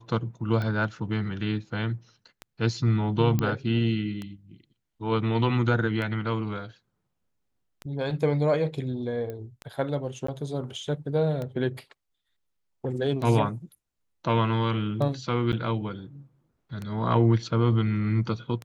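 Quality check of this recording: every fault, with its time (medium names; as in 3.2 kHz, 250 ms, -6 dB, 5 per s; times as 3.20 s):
tick 33 1/3 rpm -21 dBFS
3.39 s: pop -13 dBFS
9.30 s: pop -24 dBFS
10.27–10.28 s: dropout 14 ms
15.52–15.53 s: dropout 8.3 ms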